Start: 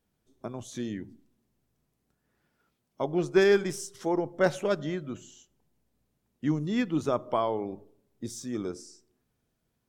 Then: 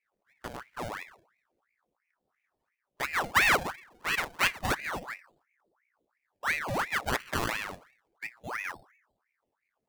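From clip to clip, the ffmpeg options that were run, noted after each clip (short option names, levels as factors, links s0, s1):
-af "adynamicsmooth=sensitivity=5:basefreq=580,acrusher=samples=20:mix=1:aa=0.000001:lfo=1:lforange=20:lforate=0.31,aeval=exprs='val(0)*sin(2*PI*1300*n/s+1300*0.75/2.9*sin(2*PI*2.9*n/s))':c=same"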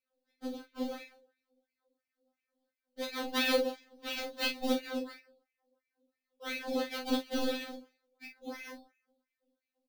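-filter_complex "[0:a]equalizer=f=125:t=o:w=1:g=4,equalizer=f=250:t=o:w=1:g=6,equalizer=f=500:t=o:w=1:g=10,equalizer=f=1000:t=o:w=1:g=-10,equalizer=f=2000:t=o:w=1:g=-10,equalizer=f=4000:t=o:w=1:g=9,equalizer=f=8000:t=o:w=1:g=-8,asplit=2[s0][s1];[s1]aecho=0:1:36|51:0.473|0.178[s2];[s0][s2]amix=inputs=2:normalize=0,afftfilt=real='re*3.46*eq(mod(b,12),0)':imag='im*3.46*eq(mod(b,12),0)':win_size=2048:overlap=0.75,volume=0.794"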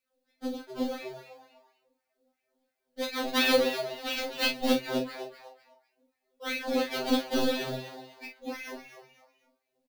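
-filter_complex "[0:a]asplit=4[s0][s1][s2][s3];[s1]adelay=249,afreqshift=130,volume=0.299[s4];[s2]adelay=498,afreqshift=260,volume=0.0923[s5];[s3]adelay=747,afreqshift=390,volume=0.0288[s6];[s0][s4][s5][s6]amix=inputs=4:normalize=0,volume=1.78"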